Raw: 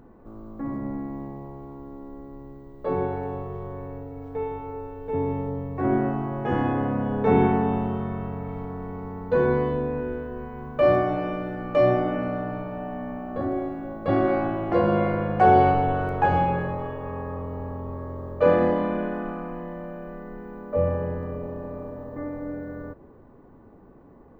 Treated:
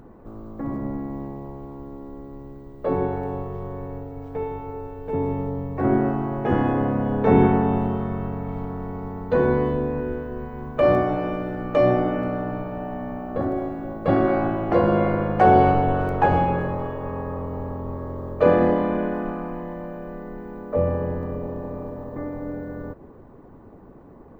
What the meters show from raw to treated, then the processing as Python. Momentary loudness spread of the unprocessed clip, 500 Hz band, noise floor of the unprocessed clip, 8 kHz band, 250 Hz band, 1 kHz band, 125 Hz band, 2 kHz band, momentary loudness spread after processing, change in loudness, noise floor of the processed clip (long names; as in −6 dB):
17 LU, +2.0 dB, −50 dBFS, can't be measured, +3.0 dB, +1.5 dB, +3.0 dB, +1.0 dB, 17 LU, +2.0 dB, −46 dBFS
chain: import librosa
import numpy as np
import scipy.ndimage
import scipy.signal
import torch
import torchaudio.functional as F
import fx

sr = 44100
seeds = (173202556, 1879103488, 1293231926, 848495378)

y = fx.hpss(x, sr, part='harmonic', gain_db=-7)
y = F.gain(torch.from_numpy(y), 7.5).numpy()